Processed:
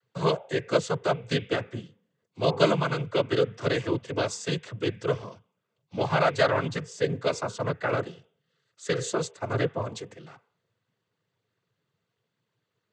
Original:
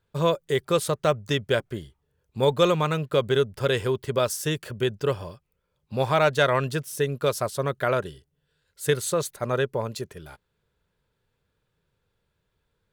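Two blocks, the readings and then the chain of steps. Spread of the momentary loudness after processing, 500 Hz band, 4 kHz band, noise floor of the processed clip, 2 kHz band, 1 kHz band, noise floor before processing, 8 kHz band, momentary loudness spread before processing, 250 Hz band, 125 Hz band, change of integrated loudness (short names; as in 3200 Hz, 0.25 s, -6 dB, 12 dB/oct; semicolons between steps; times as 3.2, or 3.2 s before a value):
11 LU, -3.0 dB, -3.0 dB, -81 dBFS, -1.5 dB, -2.0 dB, -76 dBFS, -5.5 dB, 12 LU, -1.0 dB, -2.5 dB, -2.5 dB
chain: de-hum 220.9 Hz, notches 14; noise vocoder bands 16; gain -2 dB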